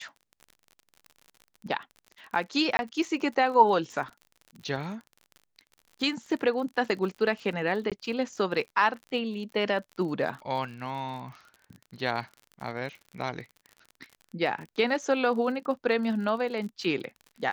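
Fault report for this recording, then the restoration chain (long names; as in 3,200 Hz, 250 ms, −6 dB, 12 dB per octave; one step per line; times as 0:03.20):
surface crackle 48 per second −38 dBFS
0:02.77–0:02.79: drop-out 21 ms
0:07.90–0:07.92: drop-out 17 ms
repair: click removal
repair the gap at 0:02.77, 21 ms
repair the gap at 0:07.90, 17 ms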